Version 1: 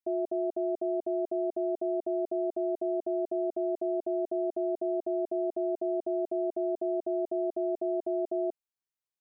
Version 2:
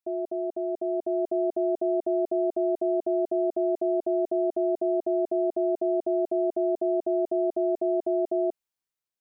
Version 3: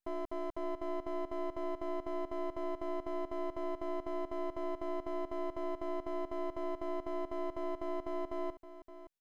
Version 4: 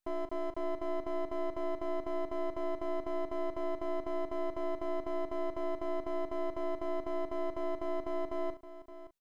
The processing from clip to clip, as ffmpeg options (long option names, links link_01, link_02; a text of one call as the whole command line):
ffmpeg -i in.wav -af "dynaudnorm=framelen=670:gausssize=3:maxgain=5dB" out.wav
ffmpeg -i in.wav -af "alimiter=level_in=5dB:limit=-24dB:level=0:latency=1,volume=-5dB,aeval=exprs='max(val(0),0)':channel_layout=same,aecho=1:1:568:0.224,volume=1dB" out.wav
ffmpeg -i in.wav -filter_complex "[0:a]asplit=2[link_01][link_02];[link_02]adelay=38,volume=-11dB[link_03];[link_01][link_03]amix=inputs=2:normalize=0,volume=2dB" out.wav